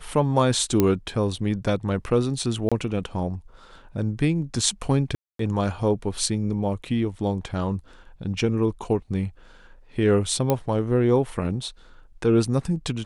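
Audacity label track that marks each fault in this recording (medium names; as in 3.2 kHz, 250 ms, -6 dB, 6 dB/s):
0.800000	0.800000	pop -6 dBFS
2.690000	2.720000	dropout 26 ms
5.150000	5.390000	dropout 243 ms
10.500000	10.500000	pop -8 dBFS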